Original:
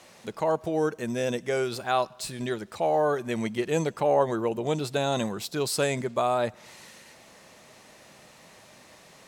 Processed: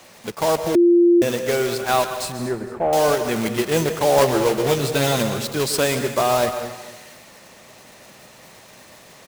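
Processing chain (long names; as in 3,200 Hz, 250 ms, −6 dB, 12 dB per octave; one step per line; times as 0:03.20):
one scale factor per block 3 bits
0:02.32–0:02.93: Gaussian smoothing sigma 4.8 samples
0:04.20–0:05.12: double-tracking delay 15 ms −4 dB
repeating echo 230 ms, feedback 32%, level −16.5 dB
dense smooth reverb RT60 1 s, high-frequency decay 0.8×, pre-delay 115 ms, DRR 8.5 dB
0:00.75–0:01.22: beep over 346 Hz −15.5 dBFS
level +5.5 dB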